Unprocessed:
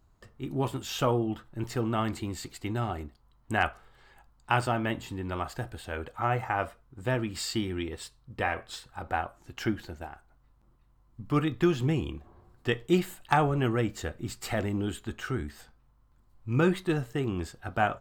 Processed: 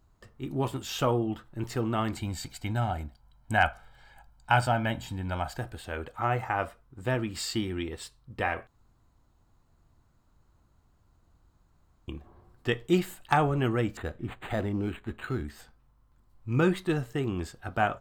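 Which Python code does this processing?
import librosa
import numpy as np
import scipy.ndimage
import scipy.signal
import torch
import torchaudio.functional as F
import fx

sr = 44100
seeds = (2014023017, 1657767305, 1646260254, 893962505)

y = fx.comb(x, sr, ms=1.3, depth=0.64, at=(2.16, 5.57))
y = fx.resample_linear(y, sr, factor=8, at=(13.97, 15.45))
y = fx.edit(y, sr, fx.room_tone_fill(start_s=8.67, length_s=3.41), tone=tone)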